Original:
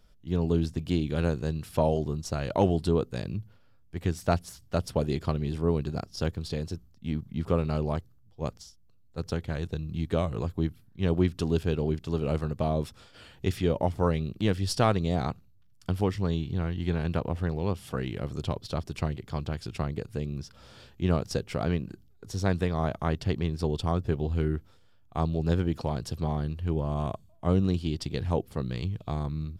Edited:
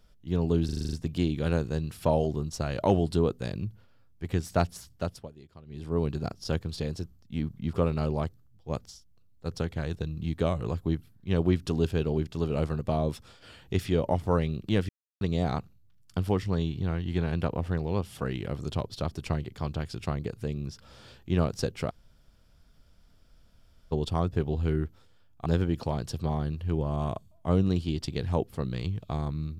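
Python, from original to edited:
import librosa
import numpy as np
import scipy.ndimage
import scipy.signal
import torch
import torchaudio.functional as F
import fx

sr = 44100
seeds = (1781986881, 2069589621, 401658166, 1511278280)

y = fx.edit(x, sr, fx.stutter(start_s=0.65, slice_s=0.04, count=8),
    fx.fade_down_up(start_s=4.6, length_s=1.19, db=-22.0, fade_s=0.42),
    fx.silence(start_s=14.61, length_s=0.32),
    fx.room_tone_fill(start_s=21.62, length_s=2.02, crossfade_s=0.02),
    fx.cut(start_s=25.18, length_s=0.26), tone=tone)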